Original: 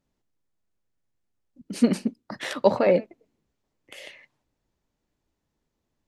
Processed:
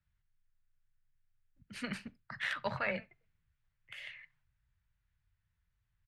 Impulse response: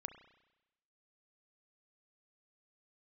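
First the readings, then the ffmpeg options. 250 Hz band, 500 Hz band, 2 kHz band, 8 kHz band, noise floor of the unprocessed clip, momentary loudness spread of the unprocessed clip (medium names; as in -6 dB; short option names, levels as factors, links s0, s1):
-20.5 dB, -20.5 dB, -1.0 dB, -15.5 dB, -80 dBFS, 22 LU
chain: -filter_complex "[0:a]firequalizer=gain_entry='entry(100,0);entry(250,-30);entry(1500,-2);entry(5600,-18)':delay=0.05:min_phase=1,afreqshift=14,asplit=2[s0][s1];[1:a]atrim=start_sample=2205,atrim=end_sample=6174,asetrate=66150,aresample=44100[s2];[s1][s2]afir=irnorm=-1:irlink=0,volume=0.891[s3];[s0][s3]amix=inputs=2:normalize=0"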